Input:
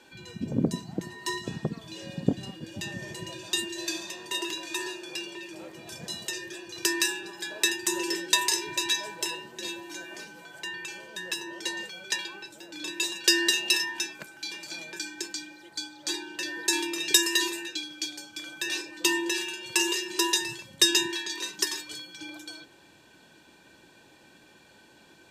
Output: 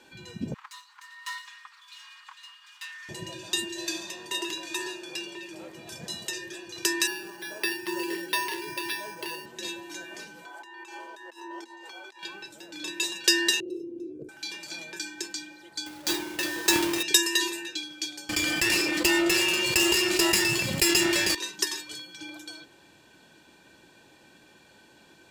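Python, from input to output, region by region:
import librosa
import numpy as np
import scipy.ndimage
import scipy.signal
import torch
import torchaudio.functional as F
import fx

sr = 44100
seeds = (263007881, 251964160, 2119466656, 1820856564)

y = fx.chain(x, sr, fx.lower_of_two(delay_ms=4.9),
    fx.steep_highpass(hz=990.0, slope=72),
    fx.high_shelf(hz=5300.0, db=-8.5), at=(0.54, 3.09))
y = fx.chain(y, sr, fx.highpass(hz=100.0, slope=12),
    fx.resample_bad(factor=6, down='filtered', up='hold'), at=(7.07, 9.46))
y = fx.chain(y, sr, fx.over_compress(threshold_db=-42.0, ratio=-1.0),
    fx.cheby_ripple_highpass(hz=240.0, ripple_db=9),
    fx.peak_eq(hz=870.0, db=6.5, octaves=1.0), at=(10.46, 12.23))
y = fx.chain(y, sr, fx.ellip_lowpass(hz=520.0, order=4, stop_db=40),
    fx.comb(ms=2.6, depth=0.76),
    fx.env_flatten(amount_pct=50), at=(13.6, 14.29))
y = fx.chain(y, sr, fx.halfwave_hold(),
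    fx.highpass(hz=62.0, slope=12), at=(15.86, 17.03))
y = fx.chain(y, sr, fx.lower_of_two(delay_ms=0.41),
    fx.highpass(hz=66.0, slope=12),
    fx.env_flatten(amount_pct=70), at=(18.29, 21.35))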